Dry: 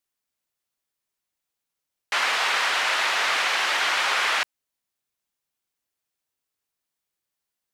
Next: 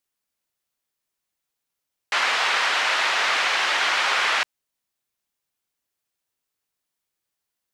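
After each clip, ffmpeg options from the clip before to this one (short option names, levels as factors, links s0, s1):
-filter_complex "[0:a]acrossover=split=8600[s0][s1];[s1]acompressor=threshold=0.00178:ratio=4:attack=1:release=60[s2];[s0][s2]amix=inputs=2:normalize=0,volume=1.19"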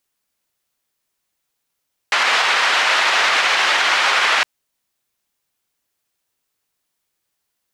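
-af "alimiter=level_in=4.22:limit=0.891:release=50:level=0:latency=1,volume=0.531"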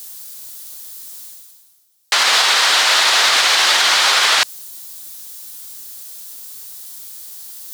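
-af "areverse,acompressor=mode=upward:threshold=0.0447:ratio=2.5,areverse,aexciter=amount=2:drive=9.3:freq=3500"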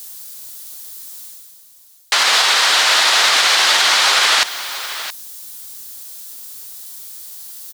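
-af "aecho=1:1:672:0.224"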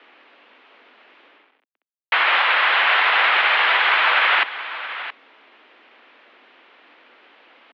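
-af "aeval=exprs='val(0)*gte(abs(val(0)),0.0168)':c=same,highpass=f=160:t=q:w=0.5412,highpass=f=160:t=q:w=1.307,lowpass=f=2800:t=q:w=0.5176,lowpass=f=2800:t=q:w=0.7071,lowpass=f=2800:t=q:w=1.932,afreqshift=89"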